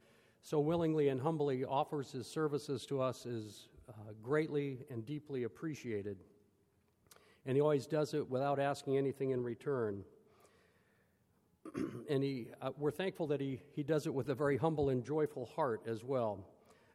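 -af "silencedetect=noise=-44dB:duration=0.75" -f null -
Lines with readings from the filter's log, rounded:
silence_start: 6.13
silence_end: 7.11 | silence_duration: 0.98
silence_start: 10.02
silence_end: 11.66 | silence_duration: 1.63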